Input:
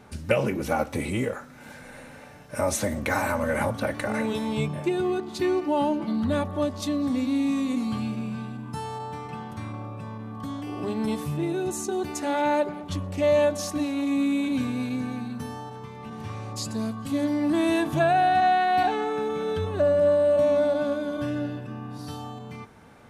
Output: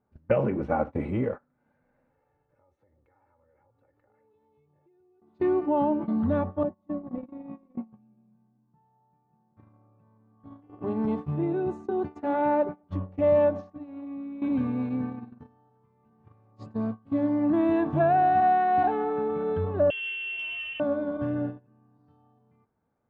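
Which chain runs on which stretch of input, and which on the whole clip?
0:02.10–0:05.22: comb filter 2.3 ms, depth 74% + downward compressor 4 to 1, threshold −41 dBFS
0:06.63–0:09.57: noise gate −27 dBFS, range −7 dB + head-to-tape spacing loss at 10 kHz 40 dB + comb filter 5.6 ms, depth 67%
0:13.51–0:14.42: high-frequency loss of the air 71 metres + downward compressor 12 to 1, threshold −28 dBFS
0:19.90–0:20.80: tilt shelving filter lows +7 dB, about 680 Hz + voice inversion scrambler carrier 3,300 Hz + saturating transformer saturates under 2,000 Hz
whole clip: noise gate −30 dBFS, range −25 dB; low-pass filter 1,200 Hz 12 dB per octave

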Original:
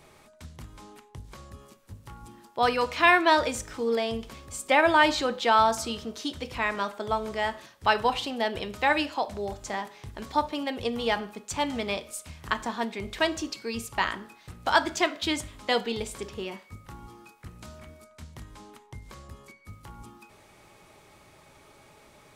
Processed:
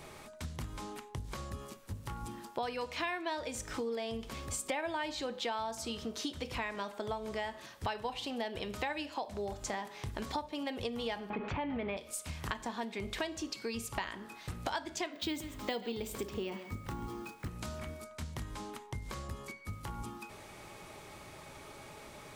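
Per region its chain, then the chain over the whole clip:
0:11.30–0:11.97: mu-law and A-law mismatch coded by mu + low-pass filter 2,500 Hz 24 dB per octave + envelope flattener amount 50%
0:15.13–0:17.49: bad sample-rate conversion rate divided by 2×, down filtered, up hold + parametric band 280 Hz +5 dB 1.4 octaves + single-tap delay 134 ms −16.5 dB
whole clip: dynamic equaliser 1,300 Hz, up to −7 dB, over −42 dBFS, Q 3.6; downward compressor 6 to 1, threshold −40 dBFS; level +4.5 dB

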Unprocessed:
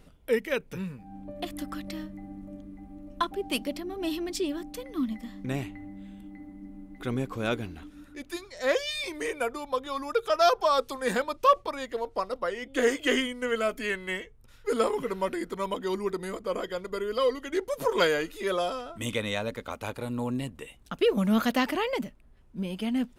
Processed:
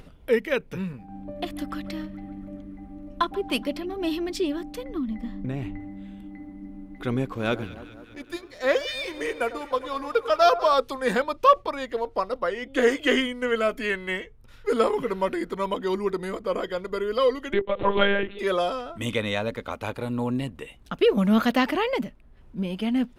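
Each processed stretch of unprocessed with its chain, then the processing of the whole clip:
0:00.93–0:03.93: noise gate with hold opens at −38 dBFS, closes at −43 dBFS + feedback echo with a band-pass in the loop 141 ms, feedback 75%, band-pass 1,800 Hz, level −19.5 dB
0:04.84–0:05.80: spectral tilt −1.5 dB per octave + downward compressor 4 to 1, threshold −30 dBFS + one half of a high-frequency compander decoder only
0:07.32–0:10.74: mu-law and A-law mismatch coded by A + delay that swaps between a low-pass and a high-pass 100 ms, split 1,400 Hz, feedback 78%, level −13.5 dB
0:17.53–0:18.39: notch filter 1,300 Hz, Q 16 + one-pitch LPC vocoder at 8 kHz 200 Hz + multiband upward and downward compressor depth 40%
whole clip: parametric band 7,500 Hz −5 dB 1.1 octaves; upward compression, threshold −46 dBFS; high-shelf EQ 11,000 Hz −9 dB; level +4 dB

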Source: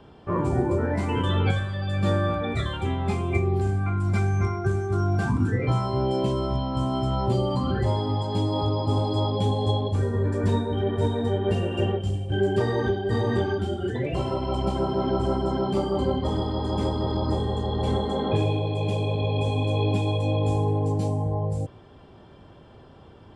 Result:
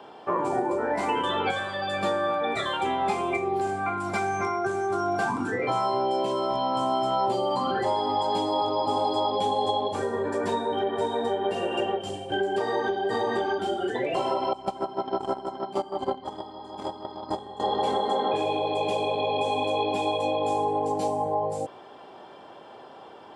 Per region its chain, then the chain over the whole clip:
0:14.53–0:17.60: noise gate −23 dBFS, range −17 dB + low-shelf EQ 120 Hz +10 dB + notch filter 490 Hz, Q 5.2
whole clip: high-pass filter 390 Hz 12 dB per octave; downward compressor, threshold −30 dBFS; parametric band 810 Hz +6 dB 0.67 octaves; level +5.5 dB

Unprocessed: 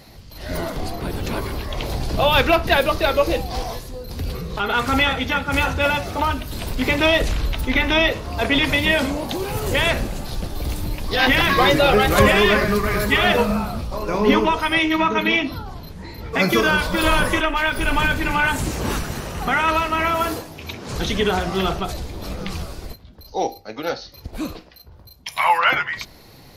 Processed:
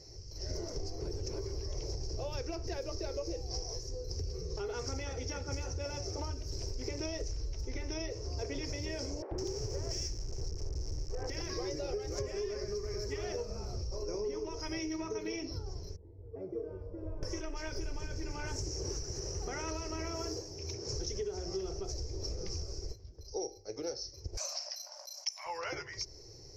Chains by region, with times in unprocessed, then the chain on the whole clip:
0:09.22–0:11.30: each half-wave held at its own peak + three-band delay without the direct sound mids, lows, highs 90/160 ms, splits 410/1,700 Hz
0:15.96–0:17.23: Chebyshev low-pass filter 600 Hz + tuned comb filter 94 Hz, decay 0.52 s, harmonics odd, mix 80%
0:24.37–0:25.46: linear-phase brick-wall band-pass 550–13,000 Hz + high-shelf EQ 8,900 Hz +8 dB + envelope flattener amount 50%
whole clip: drawn EQ curve 110 Hz 0 dB, 220 Hz −19 dB, 390 Hz +4 dB, 680 Hz −11 dB, 1,300 Hz −18 dB, 2,200 Hz −15 dB, 3,700 Hz −22 dB, 5,500 Hz +14 dB, 9,400 Hz −23 dB; downward compressor 10 to 1, threshold −29 dBFS; level −5 dB

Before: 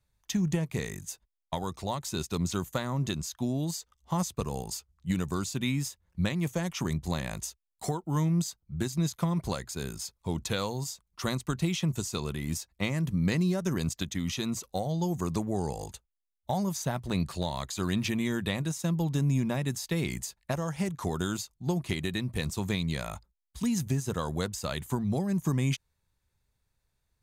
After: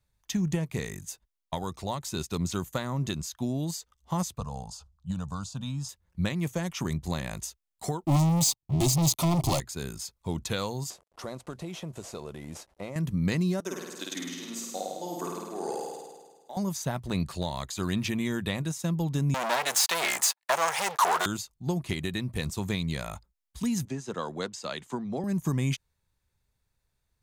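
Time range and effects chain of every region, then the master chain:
0:04.38–0:05.89: high-frequency loss of the air 73 metres + phaser with its sweep stopped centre 870 Hz, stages 4 + level that may fall only so fast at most 130 dB per second
0:08.05–0:09.60: leveller curve on the samples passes 5 + phaser with its sweep stopped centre 310 Hz, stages 8
0:10.90–0:12.96: variable-slope delta modulation 64 kbit/s + parametric band 590 Hz +14 dB 1.6 octaves + downward compressor 2 to 1, threshold −45 dBFS
0:13.60–0:16.57: high-pass filter 270 Hz 24 dB per octave + amplitude tremolo 1.9 Hz, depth 76% + flutter between parallel walls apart 8.9 metres, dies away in 1.4 s
0:19.34–0:21.26: leveller curve on the samples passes 5 + high-pass with resonance 830 Hz, resonance Q 1.6
0:23.85–0:25.24: three-way crossover with the lows and the highs turned down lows −21 dB, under 180 Hz, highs −23 dB, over 7,600 Hz + multiband upward and downward expander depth 40%
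whole clip: no processing

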